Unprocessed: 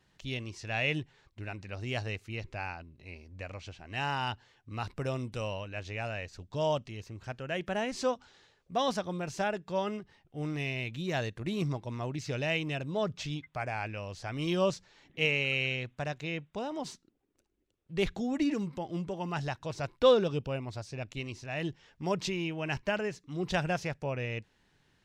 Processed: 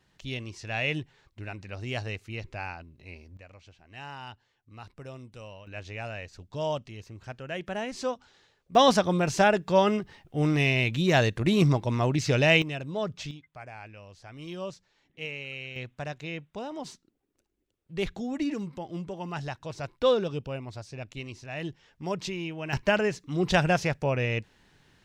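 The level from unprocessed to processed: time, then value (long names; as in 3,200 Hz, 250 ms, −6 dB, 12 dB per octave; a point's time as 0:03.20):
+1.5 dB
from 0:03.37 −9 dB
from 0:05.67 −0.5 dB
from 0:08.75 +10.5 dB
from 0:12.62 +0.5 dB
from 0:13.31 −8.5 dB
from 0:15.76 −0.5 dB
from 0:22.73 +7.5 dB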